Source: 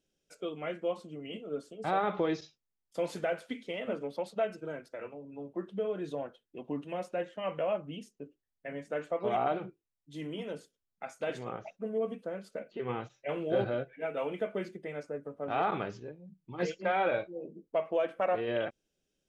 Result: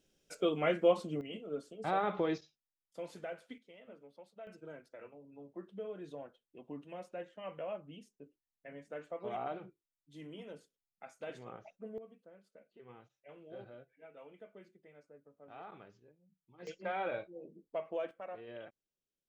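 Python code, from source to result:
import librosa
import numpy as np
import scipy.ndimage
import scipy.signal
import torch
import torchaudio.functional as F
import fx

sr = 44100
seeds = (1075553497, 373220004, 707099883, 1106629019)

y = fx.gain(x, sr, db=fx.steps((0.0, 6.0), (1.21, -3.0), (2.38, -11.0), (3.58, -19.5), (4.47, -9.5), (11.98, -20.0), (16.67, -8.0), (18.11, -16.0)))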